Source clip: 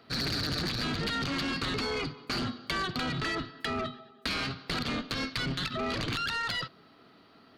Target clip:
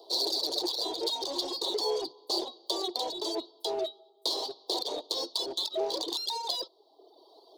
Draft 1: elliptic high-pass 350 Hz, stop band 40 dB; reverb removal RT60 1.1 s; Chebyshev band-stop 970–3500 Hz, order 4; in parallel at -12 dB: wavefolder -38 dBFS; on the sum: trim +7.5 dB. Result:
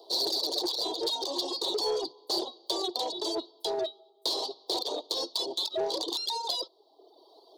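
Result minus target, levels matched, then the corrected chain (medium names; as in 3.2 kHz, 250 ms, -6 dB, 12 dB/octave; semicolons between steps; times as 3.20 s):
wavefolder: distortion -17 dB
elliptic high-pass 350 Hz, stop band 40 dB; reverb removal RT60 1.1 s; Chebyshev band-stop 970–3500 Hz, order 4; in parallel at -12 dB: wavefolder -45.5 dBFS; on the sum: trim +7.5 dB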